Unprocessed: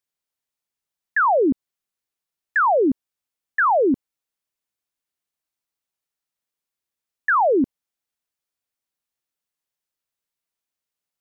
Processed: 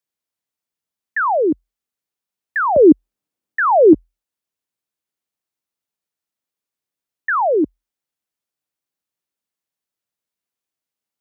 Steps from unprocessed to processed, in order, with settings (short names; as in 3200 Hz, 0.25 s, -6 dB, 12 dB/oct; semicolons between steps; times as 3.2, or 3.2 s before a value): bell 210 Hz +3.5 dB 2.9 oct, from 2.76 s +13.5 dB, from 3.93 s +4 dB; frequency shift +42 Hz; gain -1 dB